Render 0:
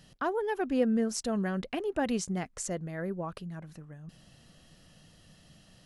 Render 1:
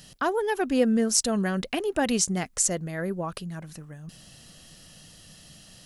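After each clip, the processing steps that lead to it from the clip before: treble shelf 3.6 kHz +11.5 dB; trim +4.5 dB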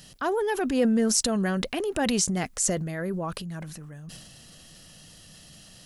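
transient shaper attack -4 dB, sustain +7 dB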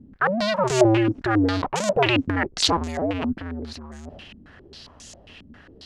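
cycle switcher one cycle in 2, inverted; step-sequenced low-pass 7.4 Hz 250–7000 Hz; trim +2.5 dB

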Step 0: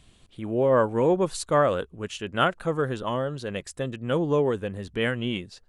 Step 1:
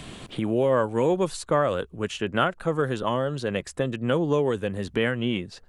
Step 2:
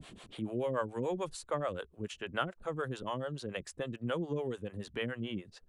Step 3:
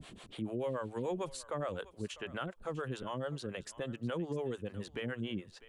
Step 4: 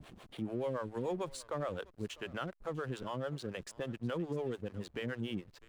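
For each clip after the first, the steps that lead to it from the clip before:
three bands compressed up and down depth 70%
harmonic tremolo 6.9 Hz, depth 100%, crossover 430 Hz; trim -7 dB
peak limiter -28 dBFS, peak gain reduction 8.5 dB; thinning echo 650 ms, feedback 17%, high-pass 590 Hz, level -16.5 dB
hysteresis with a dead band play -49 dBFS

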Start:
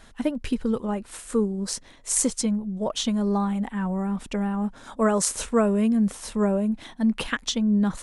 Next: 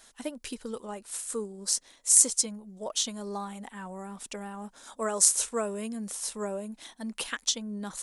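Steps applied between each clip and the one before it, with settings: tone controls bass -13 dB, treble +13 dB; trim -7.5 dB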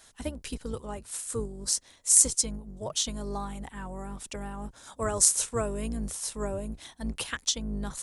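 octave divider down 2 oct, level +2 dB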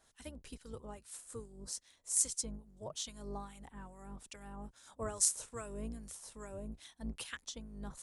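harmonic tremolo 2.4 Hz, depth 70%, crossover 1.3 kHz; trim -8 dB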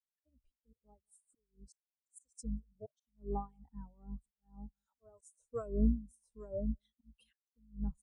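echo from a far wall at 32 m, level -21 dB; slow attack 386 ms; spectral contrast expander 2.5:1; trim +7.5 dB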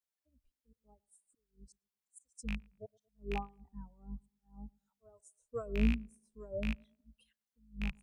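rattle on loud lows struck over -33 dBFS, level -27 dBFS; tape echo 112 ms, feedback 39%, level -24 dB, low-pass 1.2 kHz

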